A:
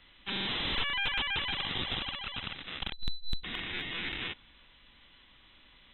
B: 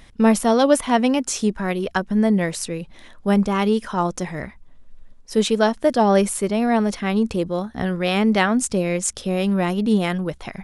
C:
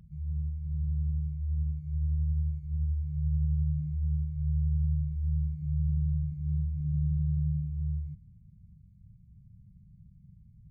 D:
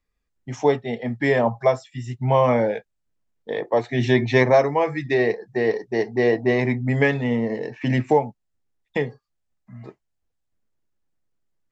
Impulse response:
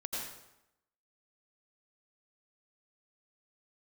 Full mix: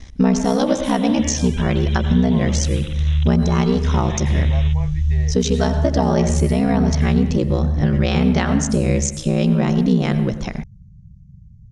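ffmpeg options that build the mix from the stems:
-filter_complex "[0:a]tiltshelf=frequency=900:gain=-7.5,acompressor=threshold=-31dB:ratio=6,acrusher=bits=8:mix=0:aa=0.000001,adelay=400,volume=-4.5dB[link_01];[1:a]aeval=exprs='val(0)*sin(2*PI*32*n/s)':channel_layout=same,volume=2dB,asplit=2[link_02][link_03];[link_03]volume=-12.5dB[link_04];[2:a]adelay=1050,volume=2dB[link_05];[3:a]equalizer=frequency=320:width=0.72:gain=-13.5,volume=-13.5dB[link_06];[link_01][link_02][link_05]amix=inputs=3:normalize=0,lowpass=frequency=6200:width_type=q:width=5,acompressor=threshold=-20dB:ratio=6,volume=0dB[link_07];[4:a]atrim=start_sample=2205[link_08];[link_04][link_08]afir=irnorm=-1:irlink=0[link_09];[link_06][link_07][link_09]amix=inputs=3:normalize=0,lowshelf=frequency=250:gain=11"

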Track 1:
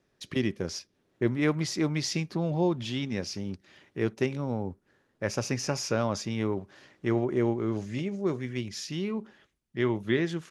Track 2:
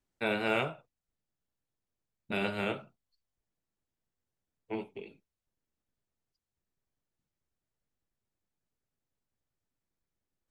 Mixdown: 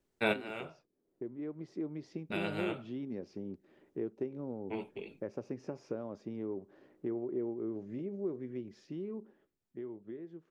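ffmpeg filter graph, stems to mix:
ffmpeg -i stem1.wav -i stem2.wav -filter_complex "[0:a]acompressor=threshold=-34dB:ratio=4,bandpass=frequency=360:width_type=q:width=1.4:csg=0,volume=-7.5dB,asplit=2[link_01][link_02];[1:a]volume=2dB[link_03];[link_02]apad=whole_len=463139[link_04];[link_03][link_04]sidechaincompress=threshold=-60dB:ratio=5:attack=23:release=1230[link_05];[link_01][link_05]amix=inputs=2:normalize=0,dynaudnorm=framelen=280:gausssize=11:maxgain=9dB" out.wav

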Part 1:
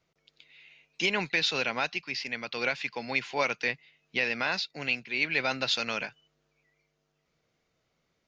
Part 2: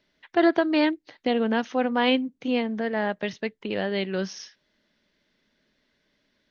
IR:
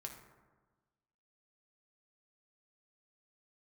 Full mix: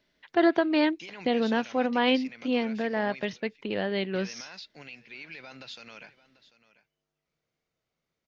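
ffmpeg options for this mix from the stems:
-filter_complex "[0:a]alimiter=level_in=0.5dB:limit=-24dB:level=0:latency=1:release=79,volume=-0.5dB,volume=-8.5dB,asplit=3[link_01][link_02][link_03];[link_01]atrim=end=3.25,asetpts=PTS-STARTPTS,afade=type=out:start_time=3.246:duration=0.004:curve=hsin[link_04];[link_02]atrim=start=3.25:end=3.95,asetpts=PTS-STARTPTS,volume=0[link_05];[link_03]atrim=start=3.95,asetpts=PTS-STARTPTS,afade=type=in:duration=0.004:curve=hsin[link_06];[link_04][link_05][link_06]concat=n=3:v=0:a=1,asplit=2[link_07][link_08];[link_08]volume=-18dB[link_09];[1:a]volume=-2dB[link_10];[link_09]aecho=0:1:742:1[link_11];[link_07][link_10][link_11]amix=inputs=3:normalize=0"

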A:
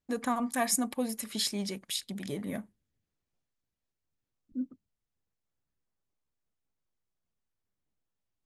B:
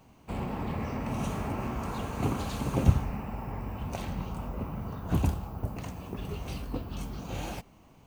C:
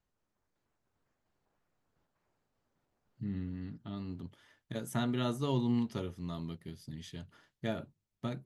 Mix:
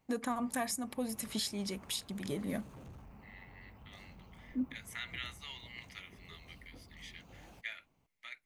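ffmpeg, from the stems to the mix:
ffmpeg -i stem1.wav -i stem2.wav -i stem3.wav -filter_complex "[0:a]volume=-0.5dB[link_01];[1:a]asoftclip=type=tanh:threshold=-30dB,volume=-18dB[link_02];[2:a]highpass=frequency=2100:width_type=q:width=8.9,volume=-4.5dB[link_03];[link_01][link_02][link_03]amix=inputs=3:normalize=0,alimiter=level_in=1.5dB:limit=-24dB:level=0:latency=1:release=398,volume=-1.5dB" out.wav

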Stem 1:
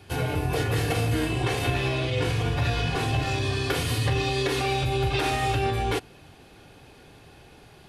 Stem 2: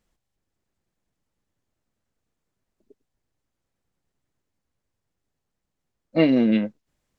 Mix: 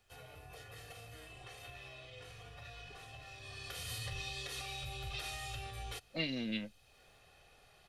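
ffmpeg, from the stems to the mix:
ffmpeg -i stem1.wav -i stem2.wav -filter_complex "[0:a]aecho=1:1:1.6:0.51,volume=-10.5dB,afade=type=in:start_time=3.38:duration=0.56:silence=0.281838[link_01];[1:a]volume=1dB[link_02];[link_01][link_02]amix=inputs=2:normalize=0,equalizer=frequency=140:width=0.36:gain=-11,acrossover=split=150|3000[link_03][link_04][link_05];[link_04]acompressor=threshold=-52dB:ratio=2.5[link_06];[link_03][link_06][link_05]amix=inputs=3:normalize=0" out.wav

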